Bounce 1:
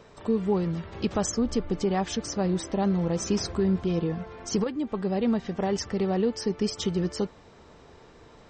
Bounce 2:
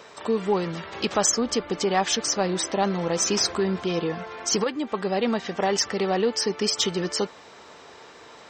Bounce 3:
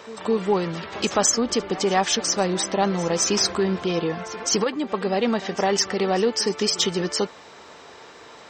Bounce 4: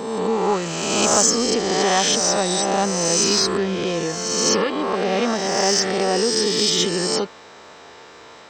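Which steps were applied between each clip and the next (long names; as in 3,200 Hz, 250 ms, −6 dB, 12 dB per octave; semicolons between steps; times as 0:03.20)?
high-pass filter 940 Hz 6 dB per octave; in parallel at −9 dB: soft clipping −28 dBFS, distortion −15 dB; on the sum: level +8.5 dB
echo ahead of the sound 210 ms −17.5 dB; level +2 dB
peak hold with a rise ahead of every peak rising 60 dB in 1.68 s; level −1.5 dB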